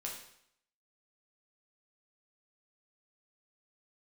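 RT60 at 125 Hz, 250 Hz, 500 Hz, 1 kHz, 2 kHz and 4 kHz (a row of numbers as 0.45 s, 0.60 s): 0.65 s, 0.70 s, 0.70 s, 0.70 s, 0.70 s, 0.70 s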